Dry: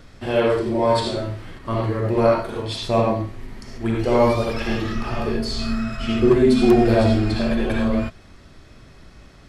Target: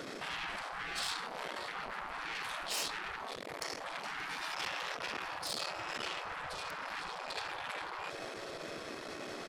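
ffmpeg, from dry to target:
-filter_complex "[0:a]areverse,acompressor=threshold=-24dB:ratio=10,areverse,lowshelf=f=360:g=8,alimiter=limit=-21dB:level=0:latency=1:release=23,asplit=2[a][b];[b]aecho=0:1:579|1158|1737|2316|2895:0.126|0.0718|0.0409|0.0233|0.0133[c];[a][c]amix=inputs=2:normalize=0,asoftclip=type=tanh:threshold=-32.5dB,aeval=exprs='0.0237*(cos(1*acos(clip(val(0)/0.0237,-1,1)))-cos(1*PI/2))+0.000422*(cos(4*acos(clip(val(0)/0.0237,-1,1)))-cos(4*PI/2))':c=same,afftfilt=real='re*lt(hypot(re,im),0.02)':imag='im*lt(hypot(re,im),0.02)':win_size=1024:overlap=0.75,volume=8.5dB"

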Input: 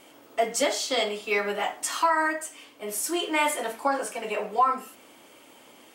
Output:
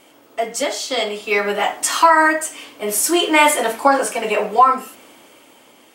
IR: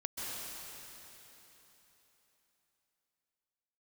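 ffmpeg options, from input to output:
-af "dynaudnorm=f=220:g=13:m=10dB,volume=2.5dB"

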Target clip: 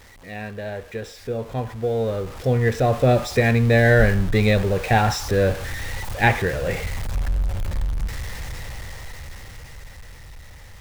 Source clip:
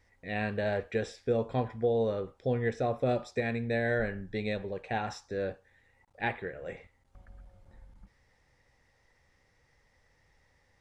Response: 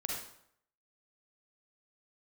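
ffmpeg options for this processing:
-af "aeval=exprs='val(0)+0.5*0.00891*sgn(val(0))':c=same,dynaudnorm=f=250:g=21:m=16.5dB,asubboost=boost=3:cutoff=140,volume=-1.5dB"

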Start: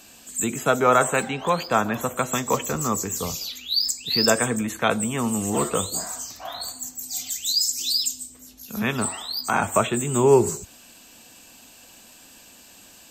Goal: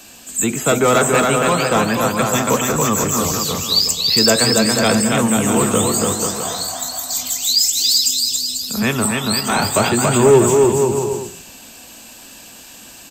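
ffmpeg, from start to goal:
-filter_complex "[0:a]aecho=1:1:280|490|647.5|765.6|854.2:0.631|0.398|0.251|0.158|0.1,acrossover=split=260|580|1900[a][b][c][d];[c]asoftclip=type=tanh:threshold=-25.5dB[e];[a][b][e][d]amix=inputs=4:normalize=0,acontrast=86"

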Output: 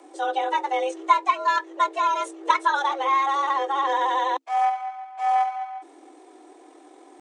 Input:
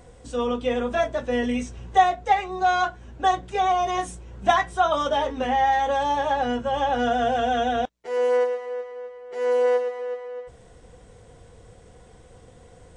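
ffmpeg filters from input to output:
-af "afreqshift=270,atempo=1.8"

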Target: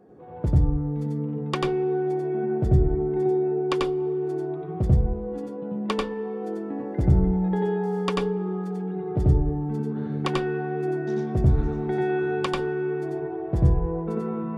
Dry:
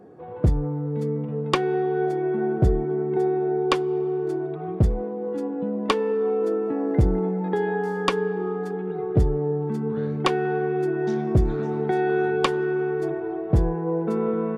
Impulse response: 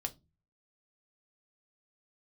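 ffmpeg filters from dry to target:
-filter_complex "[0:a]asplit=2[a][b];[1:a]atrim=start_sample=2205,lowshelf=f=150:g=11,adelay=91[c];[b][c]afir=irnorm=-1:irlink=0,volume=-0.5dB[d];[a][d]amix=inputs=2:normalize=0,volume=-6.5dB"

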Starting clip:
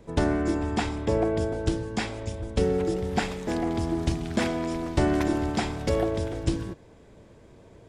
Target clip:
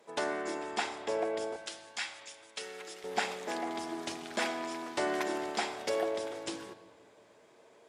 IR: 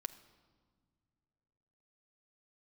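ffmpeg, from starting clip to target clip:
-filter_complex "[0:a]asetnsamples=n=441:p=0,asendcmd='1.56 highpass f 1500;3.04 highpass f 570',highpass=630[a];[1:a]atrim=start_sample=2205,asetrate=37485,aresample=44100[b];[a][b]afir=irnorm=-1:irlink=0"

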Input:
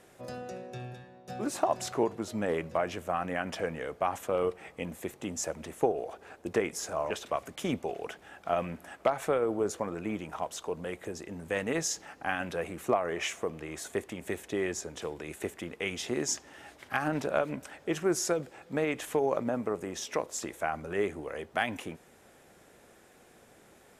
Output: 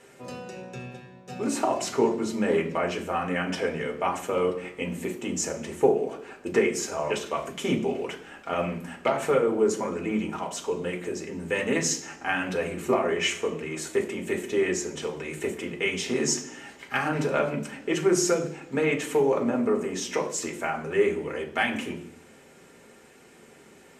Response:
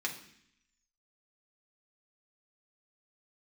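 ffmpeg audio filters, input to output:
-filter_complex "[0:a]lowshelf=f=190:g=7[a];[1:a]atrim=start_sample=2205,asetrate=52920,aresample=44100[b];[a][b]afir=irnorm=-1:irlink=0,volume=4dB"

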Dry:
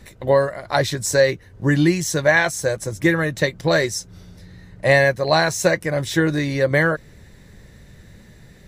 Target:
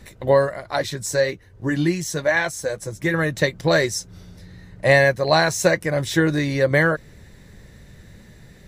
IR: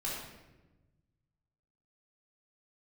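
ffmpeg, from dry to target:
-filter_complex "[0:a]asettb=1/sr,asplit=3[a][b][c];[a]atrim=end=0.634[d];[b]atrim=start=0.63:end=3.14,asetpts=PTS-STARTPTS,afade=t=in:d=0.004:c=qsin,afade=t=out:st=2.506:d=0.004:c=qsin,flanger=delay=1.8:depth=4.5:regen=-59:speed=1.1:shape=triangular[e];[c]atrim=start=3.136[f];[d][e]acrossfade=d=0.004:c1=hsin:c2=qsin[g];[g][f]acrossfade=d=0.004:c1=qsin:c2=hsin"

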